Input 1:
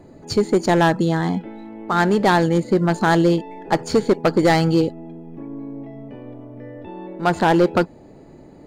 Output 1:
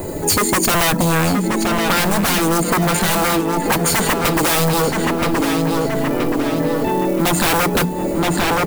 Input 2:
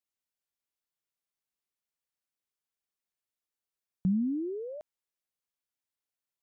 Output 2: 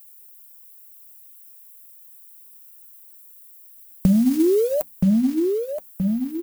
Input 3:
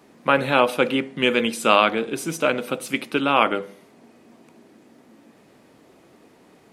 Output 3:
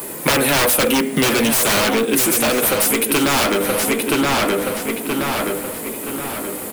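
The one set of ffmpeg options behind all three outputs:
-filter_complex "[0:a]acrossover=split=420[a][b];[b]aexciter=amount=6.1:drive=4.2:freq=7.9k[c];[a][c]amix=inputs=2:normalize=0,equalizer=f=130:t=o:w=0.2:g=-8.5,bandreject=f=60:t=h:w=6,bandreject=f=120:t=h:w=6,bandreject=f=180:t=h:w=6,bandreject=f=240:t=h:w=6,bandreject=f=300:t=h:w=6,acrusher=bits=6:mode=log:mix=0:aa=0.000001,flanger=delay=2:depth=3.2:regen=-46:speed=0.34:shape=sinusoidal,highshelf=f=8.5k:g=10.5,aeval=exprs='0.708*sin(PI/2*10*val(0)/0.708)':c=same,asplit=2[d][e];[e]adelay=974,lowpass=f=4.4k:p=1,volume=-6.5dB,asplit=2[f][g];[g]adelay=974,lowpass=f=4.4k:p=1,volume=0.45,asplit=2[h][i];[i]adelay=974,lowpass=f=4.4k:p=1,volume=0.45,asplit=2[j][k];[k]adelay=974,lowpass=f=4.4k:p=1,volume=0.45,asplit=2[l][m];[m]adelay=974,lowpass=f=4.4k:p=1,volume=0.45[n];[f][h][j][l][n]amix=inputs=5:normalize=0[o];[d][o]amix=inputs=2:normalize=0,acompressor=threshold=-14dB:ratio=12"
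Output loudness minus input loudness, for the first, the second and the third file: +2.0, +12.0, +4.0 LU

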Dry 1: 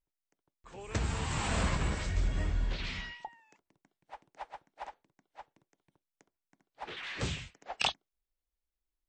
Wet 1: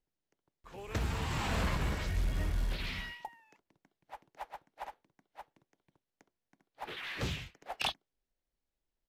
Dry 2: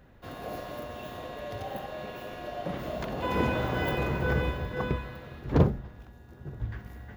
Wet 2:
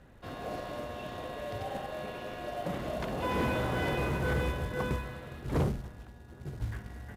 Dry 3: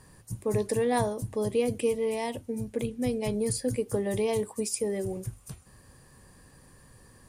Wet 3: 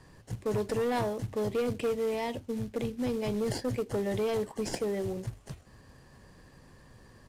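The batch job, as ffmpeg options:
-filter_complex "[0:a]acrossover=split=610|7100[a][b][c];[c]acrusher=samples=36:mix=1:aa=0.000001[d];[a][b][d]amix=inputs=3:normalize=0,asoftclip=type=tanh:threshold=-24dB,acrusher=bits=5:mode=log:mix=0:aa=0.000001,aresample=32000,aresample=44100"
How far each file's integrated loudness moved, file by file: -2.5, -3.0, -2.5 LU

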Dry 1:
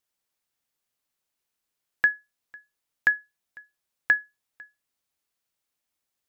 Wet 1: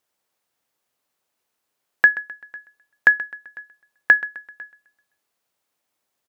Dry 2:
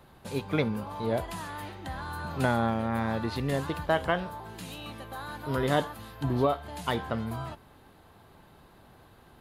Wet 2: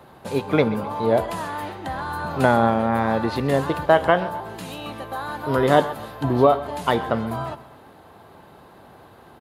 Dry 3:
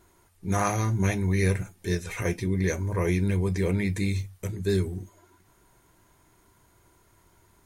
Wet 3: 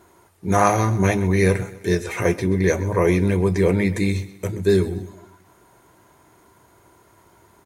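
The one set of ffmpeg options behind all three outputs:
-filter_complex "[0:a]highpass=67,equalizer=f=640:w=0.46:g=7,asplit=2[a][b];[b]aecho=0:1:129|258|387|516:0.141|0.0622|0.0273|0.012[c];[a][c]amix=inputs=2:normalize=0,volume=4dB"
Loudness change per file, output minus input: +7.0, +9.5, +7.0 LU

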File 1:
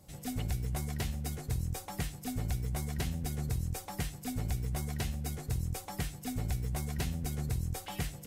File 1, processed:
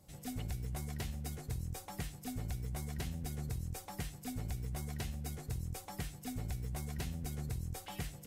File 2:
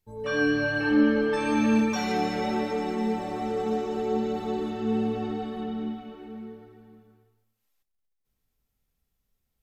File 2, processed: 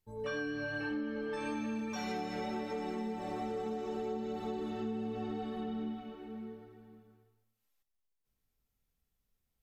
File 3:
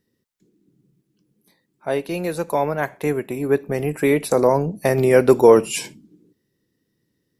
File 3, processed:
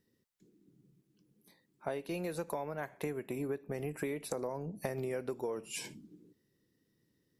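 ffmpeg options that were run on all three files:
-af "acompressor=threshold=-29dB:ratio=20,volume=-4.5dB"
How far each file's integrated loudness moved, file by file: -5.5, -12.0, -20.0 LU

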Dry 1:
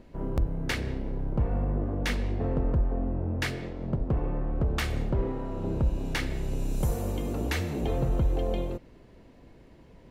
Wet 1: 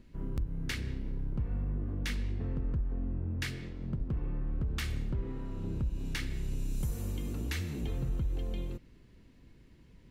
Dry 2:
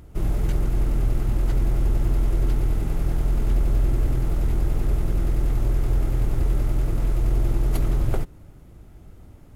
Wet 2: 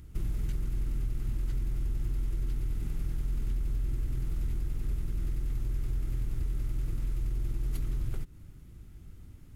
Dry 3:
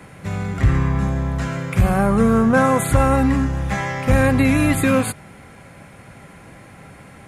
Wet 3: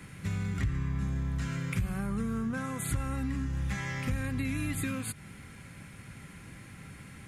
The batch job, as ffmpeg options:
-af "acompressor=threshold=-25dB:ratio=5,equalizer=f=660:w=0.87:g=-14.5,volume=-2.5dB"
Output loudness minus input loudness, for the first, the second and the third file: -6.0, -10.5, -15.0 LU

